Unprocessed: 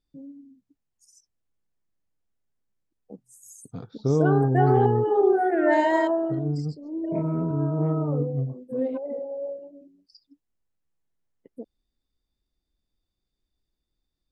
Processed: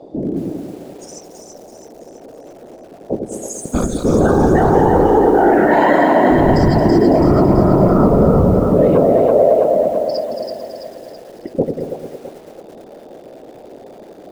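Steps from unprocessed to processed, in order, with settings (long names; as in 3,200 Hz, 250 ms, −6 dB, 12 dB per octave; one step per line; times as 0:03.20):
low-shelf EQ 170 Hz −10 dB
hum removal 86.19 Hz, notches 27
reversed playback
downward compressor 6 to 1, threshold −31 dBFS, peak gain reduction 13.5 dB
reversed playback
noise in a band 260–670 Hz −64 dBFS
random phases in short frames
high-frequency loss of the air 75 metres
on a send: echo with a time of its own for lows and highs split 560 Hz, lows 92 ms, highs 330 ms, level −4.5 dB
on the sum: boost into a limiter +27.5 dB
feedback echo at a low word length 222 ms, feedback 55%, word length 6 bits, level −9 dB
level −3 dB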